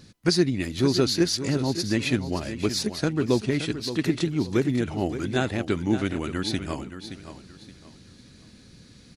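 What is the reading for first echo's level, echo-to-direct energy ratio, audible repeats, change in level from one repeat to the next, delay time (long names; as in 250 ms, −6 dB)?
−11.0 dB, −10.5 dB, 3, −11.0 dB, 572 ms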